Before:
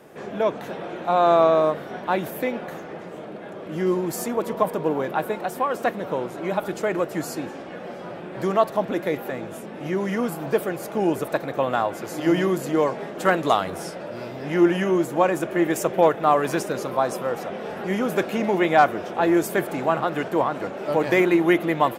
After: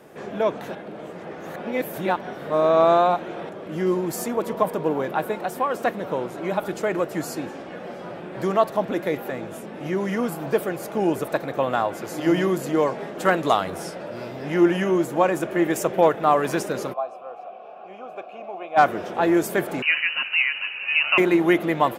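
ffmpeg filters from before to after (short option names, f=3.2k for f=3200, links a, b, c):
-filter_complex "[0:a]asplit=3[a][b][c];[a]afade=t=out:st=16.92:d=0.02[d];[b]asplit=3[e][f][g];[e]bandpass=f=730:t=q:w=8,volume=0dB[h];[f]bandpass=f=1.09k:t=q:w=8,volume=-6dB[i];[g]bandpass=f=2.44k:t=q:w=8,volume=-9dB[j];[h][i][j]amix=inputs=3:normalize=0,afade=t=in:st=16.92:d=0.02,afade=t=out:st=18.76:d=0.02[k];[c]afade=t=in:st=18.76:d=0.02[l];[d][k][l]amix=inputs=3:normalize=0,asettb=1/sr,asplit=3[m][n][o];[m]atrim=end=19.824[p];[n]atrim=start=19.82:end=21.18,asetpts=PTS-STARTPTS,afade=t=in:d=0.004:c=qsin,afade=t=out:st=1.356:d=0.004:c=qsin,lowpass=f=2.6k:t=q:w=0.5098,lowpass=f=2.6k:t=q:w=0.6013,lowpass=f=2.6k:t=q:w=0.9,lowpass=f=2.6k:t=q:w=2.563,afreqshift=-3100[q];[o]atrim=start=21.176[r];[p][q]acrossfade=d=0.004:c1=hsin:c2=qsin[s];[s][r]acrossfade=d=0.004:c1=qsin:c2=hsin,asplit=3[t][u][v];[t]atrim=end=0.752[w];[u]atrim=start=0.748:end=3.492,asetpts=PTS-STARTPTS,areverse[x];[v]atrim=start=3.488[y];[w][x]acrossfade=d=0.004:c1=hsin:c2=hsin[z];[z][y]acrossfade=d=0.004:c1=hsin:c2=hsin"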